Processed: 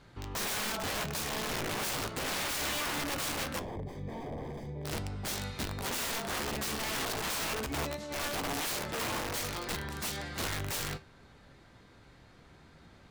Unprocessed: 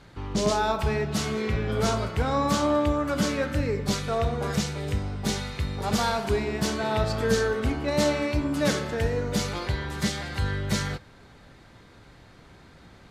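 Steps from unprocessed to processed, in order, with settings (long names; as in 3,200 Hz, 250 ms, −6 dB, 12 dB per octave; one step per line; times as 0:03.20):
0:07.66–0:08.17: compressor whose output falls as the input rises −31 dBFS, ratio −1
wrap-around overflow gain 23.5 dB
0:03.59–0:04.85: moving average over 32 samples
flanger 0.21 Hz, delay 7.9 ms, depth 7.9 ms, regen +76%
level −1.5 dB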